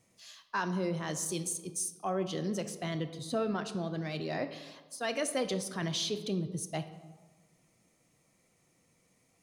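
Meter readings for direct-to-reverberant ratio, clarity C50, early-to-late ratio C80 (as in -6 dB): 8.5 dB, 11.5 dB, 13.5 dB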